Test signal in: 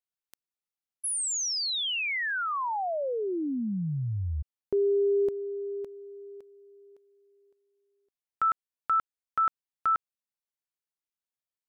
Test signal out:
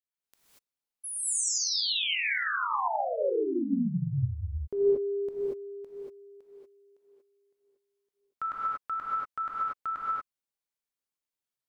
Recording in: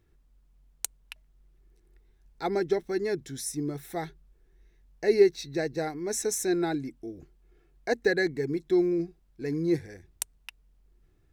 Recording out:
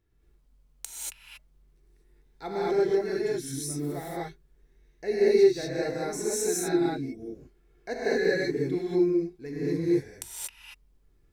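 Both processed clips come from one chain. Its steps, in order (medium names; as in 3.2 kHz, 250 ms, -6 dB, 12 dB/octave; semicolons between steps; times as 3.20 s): gated-style reverb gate 260 ms rising, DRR -7.5 dB; trim -7.5 dB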